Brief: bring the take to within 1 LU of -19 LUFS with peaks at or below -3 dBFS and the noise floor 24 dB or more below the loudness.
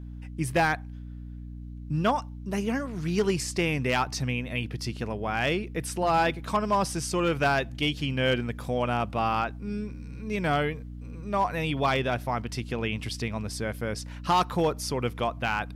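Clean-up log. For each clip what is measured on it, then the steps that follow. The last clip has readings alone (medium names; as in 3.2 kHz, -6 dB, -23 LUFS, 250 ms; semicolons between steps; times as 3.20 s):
clipped samples 0.4%; clipping level -17.0 dBFS; hum 60 Hz; highest harmonic 300 Hz; hum level -37 dBFS; loudness -28.0 LUFS; peak level -17.0 dBFS; loudness target -19.0 LUFS
-> clip repair -17 dBFS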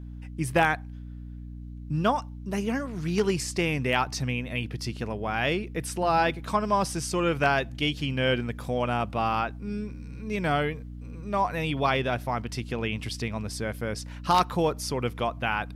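clipped samples 0.0%; hum 60 Hz; highest harmonic 300 Hz; hum level -37 dBFS
-> hum notches 60/120/180/240/300 Hz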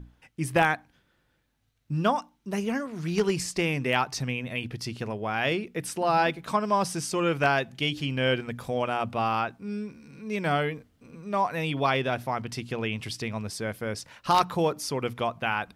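hum not found; loudness -28.0 LUFS; peak level -8.0 dBFS; loudness target -19.0 LUFS
-> trim +9 dB; peak limiter -3 dBFS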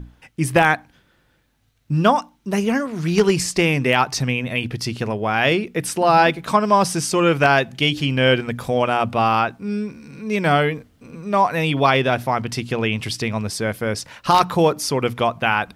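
loudness -19.5 LUFS; peak level -3.0 dBFS; noise floor -61 dBFS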